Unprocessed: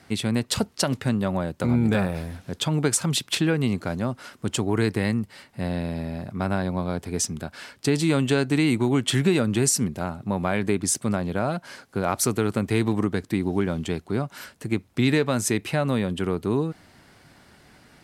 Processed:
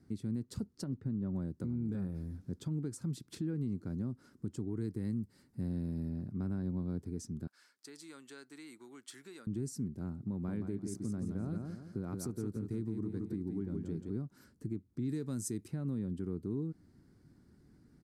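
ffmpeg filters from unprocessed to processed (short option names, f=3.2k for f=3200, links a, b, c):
-filter_complex "[0:a]asettb=1/sr,asplit=3[a][b][c];[a]atrim=end=0.844[d];[b]atrim=start=0.84:end=1.35,asetpts=PTS-STARTPTS,afade=t=in:d=0.004:c=qsin,afade=t=out:st=0.506:d=0.004:c=qsin,lowpass=f=1.6k:p=1[e];[c]atrim=start=1.346[f];[d][e]acrossfade=d=0.004:c1=hsin:c2=qsin[g];[g][f]acrossfade=d=0.004:c1=qsin:c2=hsin,asettb=1/sr,asplit=3[h][i][j];[h]atrim=end=4.814[k];[i]atrim=start=4.81:end=6.09,asetpts=PTS-STARTPTS,afade=t=in:d=0.004:c=qsin,afade=t=out:st=1.276:d=0.004:c=qsin,highshelf=f=6.3k:g=8[l];[j]atrim=start=6.086[m];[k][l]acrossfade=d=0.004:c1=hsin:c2=qsin[n];[n][m]acrossfade=d=0.004:c1=qsin:c2=hsin,asettb=1/sr,asplit=3[o][p][q];[o]atrim=end=7.474[r];[p]atrim=start=7.47:end=9.47,asetpts=PTS-STARTPTS,afade=t=in:d=0.004:c=qsin,afade=t=out:st=1.996:d=0.004:c=qsin,highpass=1.2k[s];[q]atrim=start=9.466[t];[r][s]acrossfade=d=0.004:c1=hsin:c2=qsin[u];[u][t]acrossfade=d=0.004:c1=qsin:c2=hsin,asettb=1/sr,asplit=3[v][w][x];[v]atrim=end=10.314[y];[w]atrim=start=10.31:end=14.1,asetpts=PTS-STARTPTS,afade=t=in:d=0.004:c=qsin,afade=t=out:st=3.786:d=0.004:c=qsin,aecho=1:1:170|340|510|680:0.501|0.18|0.065|0.0234,atrim=end_sample=167139[z];[x]atrim=start=14.096[aa];[y][z]acrossfade=d=0.004:c1=hsin:c2=qsin[ab];[ab][aa]acrossfade=d=0.004:c1=qsin:c2=hsin,asettb=1/sr,asplit=3[ac][ad][ae];[ac]atrim=end=15.094[af];[ad]atrim=start=15.09:end=15.68,asetpts=PTS-STARTPTS,afade=t=in:d=0.004:c=qsin,afade=t=out:st=0.586:d=0.004:c=qsin,equalizer=f=9.2k:t=o:w=2:g=13.5[ag];[ae]atrim=start=15.676[ah];[af][ag]acrossfade=d=0.004:c1=hsin:c2=qsin[ai];[ai][ah]acrossfade=d=0.004:c1=qsin:c2=hsin,firequalizer=gain_entry='entry(320,0);entry(620,-19);entry(1400,-16);entry(2800,-26);entry(4700,-15)':delay=0.05:min_phase=1,alimiter=limit=-22.5dB:level=0:latency=1:release=343,volume=-6dB"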